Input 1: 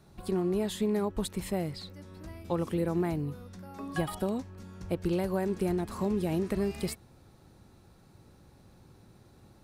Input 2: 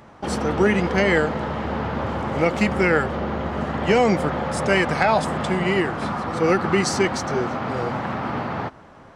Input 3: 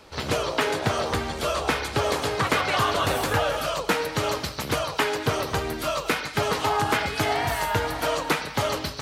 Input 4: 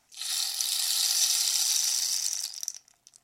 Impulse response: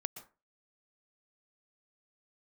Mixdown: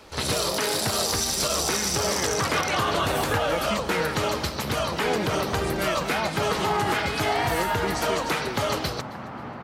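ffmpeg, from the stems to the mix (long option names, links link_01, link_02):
-filter_complex "[0:a]volume=-7dB[link_01];[1:a]adelay=1100,volume=-10dB[link_02];[2:a]volume=1.5dB,asplit=2[link_03][link_04];[link_04]volume=-22dB[link_05];[3:a]volume=3dB[link_06];[link_05]aecho=0:1:268|536|804|1072|1340:1|0.36|0.13|0.0467|0.0168[link_07];[link_01][link_02][link_03][link_06][link_07]amix=inputs=5:normalize=0,alimiter=limit=-14.5dB:level=0:latency=1:release=65"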